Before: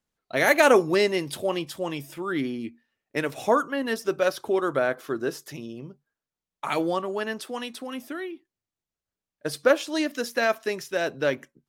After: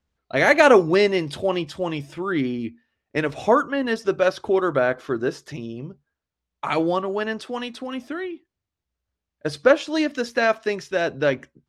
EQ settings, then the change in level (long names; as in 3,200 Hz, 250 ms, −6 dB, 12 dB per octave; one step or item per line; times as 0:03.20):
high-frequency loss of the air 81 metres
parametric band 67 Hz +15 dB 0.92 octaves
+4.0 dB